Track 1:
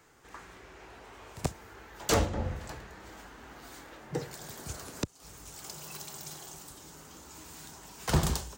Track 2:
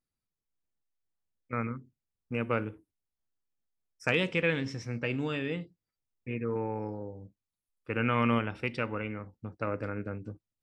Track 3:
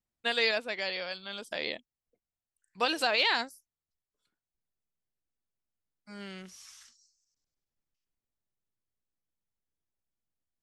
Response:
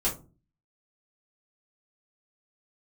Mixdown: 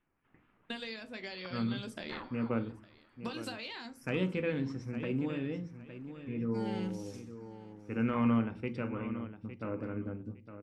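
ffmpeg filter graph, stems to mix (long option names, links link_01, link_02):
-filter_complex "[0:a]lowpass=1200,aeval=exprs='val(0)*sin(2*PI*1100*n/s+1100*0.25/4.2*sin(2*PI*4.2*n/s))':channel_layout=same,volume=-16.5dB[link_01];[1:a]adynamicequalizer=threshold=0.00631:dfrequency=660:dqfactor=0.76:tfrequency=660:tqfactor=0.76:attack=5:release=100:ratio=0.375:range=4:mode=boostabove:tftype=bell,volume=-13.5dB,asplit=3[link_02][link_03][link_04];[link_03]volume=-15.5dB[link_05];[link_04]volume=-10dB[link_06];[2:a]agate=range=-14dB:threshold=-51dB:ratio=16:detection=peak,acompressor=threshold=-36dB:ratio=16,adelay=450,volume=-5dB,asplit=3[link_07][link_08][link_09];[link_08]volume=-13dB[link_10];[link_09]volume=-18dB[link_11];[3:a]atrim=start_sample=2205[link_12];[link_05][link_10]amix=inputs=2:normalize=0[link_13];[link_13][link_12]afir=irnorm=-1:irlink=0[link_14];[link_06][link_11]amix=inputs=2:normalize=0,aecho=0:1:860|1720|2580|3440:1|0.23|0.0529|0.0122[link_15];[link_01][link_02][link_07][link_14][link_15]amix=inputs=5:normalize=0,lowshelf=frequency=390:width_type=q:width=1.5:gain=8"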